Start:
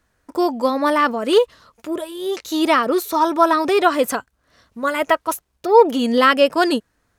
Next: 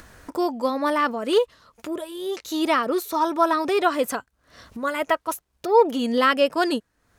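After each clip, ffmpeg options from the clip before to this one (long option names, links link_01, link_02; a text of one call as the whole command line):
ffmpeg -i in.wav -af "acompressor=mode=upward:threshold=-24dB:ratio=2.5,volume=-5dB" out.wav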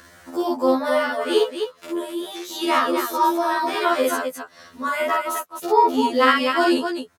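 ffmpeg -i in.wav -filter_complex "[0:a]highpass=frequency=240:poles=1,asplit=2[link_01][link_02];[link_02]aecho=0:1:49.56|259.5:0.891|0.501[link_03];[link_01][link_03]amix=inputs=2:normalize=0,afftfilt=real='re*2*eq(mod(b,4),0)':imag='im*2*eq(mod(b,4),0)':win_size=2048:overlap=0.75,volume=2.5dB" out.wav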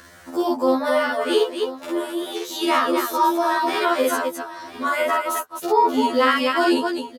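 ffmpeg -i in.wav -filter_complex "[0:a]aecho=1:1:997:0.158,asplit=2[link_01][link_02];[link_02]alimiter=limit=-12.5dB:level=0:latency=1:release=186,volume=1dB[link_03];[link_01][link_03]amix=inputs=2:normalize=0,volume=-5dB" out.wav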